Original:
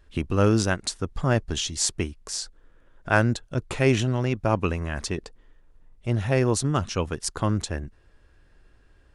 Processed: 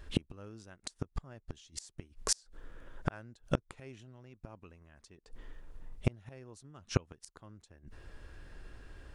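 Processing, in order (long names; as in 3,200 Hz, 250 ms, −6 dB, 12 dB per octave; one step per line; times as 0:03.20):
gate with flip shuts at −20 dBFS, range −36 dB
level +6.5 dB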